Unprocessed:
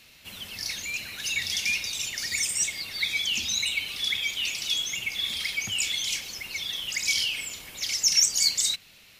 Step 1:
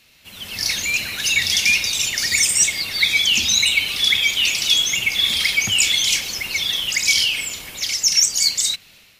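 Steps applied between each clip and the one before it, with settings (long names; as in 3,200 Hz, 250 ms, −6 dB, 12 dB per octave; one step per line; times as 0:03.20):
automatic gain control gain up to 13 dB
level −1 dB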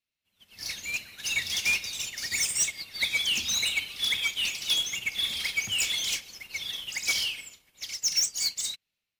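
soft clipping −15 dBFS, distortion −12 dB
expander for the loud parts 2.5 to 1, over −39 dBFS
level −3.5 dB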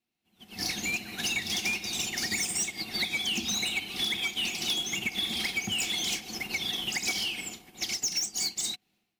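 automatic gain control gain up to 8 dB
hollow resonant body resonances 220/330/730 Hz, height 16 dB, ringing for 40 ms
downward compressor 6 to 1, threshold −29 dBFS, peak gain reduction 14.5 dB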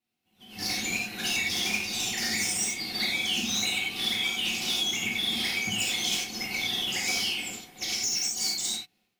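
reverb whose tail is shaped and stops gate 120 ms flat, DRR −4 dB
level −3 dB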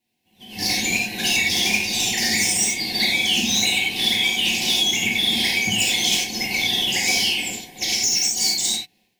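Butterworth band-reject 1,300 Hz, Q 2.3
level +8.5 dB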